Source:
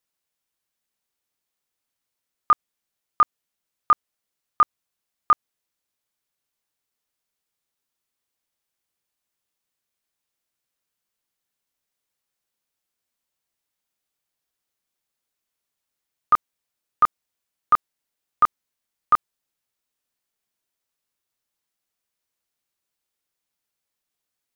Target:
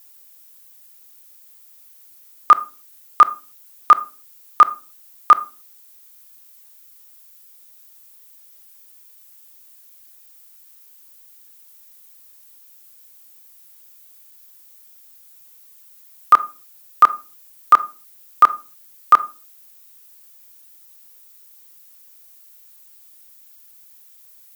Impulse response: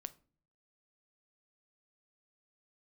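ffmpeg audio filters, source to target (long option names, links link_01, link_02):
-filter_complex "[0:a]highpass=300,aemphasis=mode=production:type=50fm,asplit=2[link_01][link_02];[1:a]atrim=start_sample=2205,afade=type=out:start_time=0.37:duration=0.01,atrim=end_sample=16758,asetrate=48510,aresample=44100[link_03];[link_02][link_03]afir=irnorm=-1:irlink=0,volume=-2.5dB[link_04];[link_01][link_04]amix=inputs=2:normalize=0,alimiter=level_in=17dB:limit=-1dB:release=50:level=0:latency=1,volume=-1dB"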